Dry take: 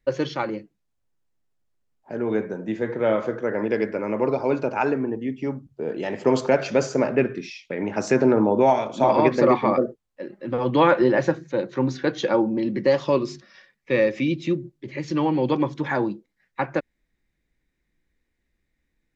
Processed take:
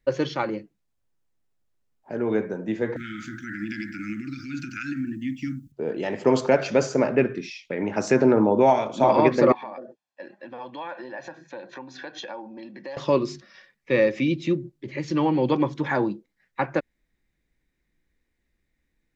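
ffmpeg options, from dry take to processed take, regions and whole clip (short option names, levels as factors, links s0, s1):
-filter_complex "[0:a]asettb=1/sr,asplit=3[s0][s1][s2];[s0]atrim=end=2.964[s3];[s1]atrim=start=2.96:end=5.72,asetpts=PTS-STARTPTS,afade=t=in:d=0.004:c=qsin,afade=t=out:st=2.756:d=0.004:c=qsin,aemphasis=mode=production:type=75kf,acompressor=threshold=0.0794:ratio=6:attack=3.2:release=140:knee=1:detection=peak,asuperstop=centerf=660:order=20:qfactor=0.65[s4];[s2]atrim=start=5.716[s5];[s3][s4]acrossfade=d=0.004:c1=hsin:c2=qsin[s6];[s6][s5]acrossfade=d=0.004:c1=qsin:c2=hsin,asettb=1/sr,asplit=3[s7][s8][s9];[s7]atrim=end=9.524[s10];[s8]atrim=start=9.52:end=12.97,asetpts=PTS-STARTPTS,afade=t=in:d=0.004:c=qsin,afade=t=out:st=3.446:d=0.004:c=qsin,aecho=1:1:1.2:0.61,atrim=end_sample=152145,acompressor=threshold=0.0251:ratio=6:attack=3.2:release=140:knee=1:detection=peak,highpass=360,lowpass=6000[s11];[s9]atrim=start=12.966[s12];[s10][s11]acrossfade=d=0.004:c1=hsin:c2=qsin[s13];[s13][s12]acrossfade=d=0.004:c1=qsin:c2=hsin"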